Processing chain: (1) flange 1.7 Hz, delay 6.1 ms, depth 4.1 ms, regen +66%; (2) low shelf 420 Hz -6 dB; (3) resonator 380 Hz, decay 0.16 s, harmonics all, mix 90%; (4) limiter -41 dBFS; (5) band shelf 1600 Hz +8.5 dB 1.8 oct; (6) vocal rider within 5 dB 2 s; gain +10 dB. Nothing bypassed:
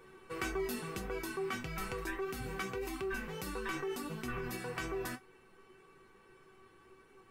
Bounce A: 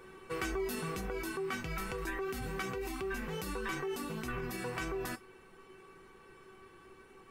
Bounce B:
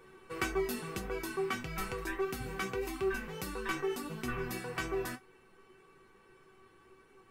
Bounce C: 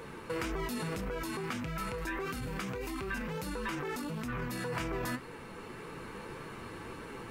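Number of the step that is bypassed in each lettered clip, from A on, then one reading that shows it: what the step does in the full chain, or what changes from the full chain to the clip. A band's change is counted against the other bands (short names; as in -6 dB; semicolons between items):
1, momentary loudness spread change +17 LU; 4, crest factor change +1.5 dB; 3, 125 Hz band +4.0 dB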